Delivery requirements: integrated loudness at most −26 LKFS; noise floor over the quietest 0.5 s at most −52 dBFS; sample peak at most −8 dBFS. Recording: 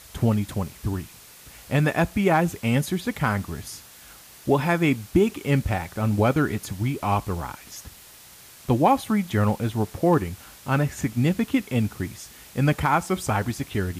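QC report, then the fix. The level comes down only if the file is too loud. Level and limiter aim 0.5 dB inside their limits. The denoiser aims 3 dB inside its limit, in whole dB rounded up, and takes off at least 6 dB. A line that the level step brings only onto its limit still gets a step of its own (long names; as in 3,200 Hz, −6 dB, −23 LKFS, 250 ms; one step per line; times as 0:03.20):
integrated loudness −24.0 LKFS: out of spec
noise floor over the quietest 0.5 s −48 dBFS: out of spec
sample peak −7.5 dBFS: out of spec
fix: broadband denoise 6 dB, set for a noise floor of −48 dBFS
level −2.5 dB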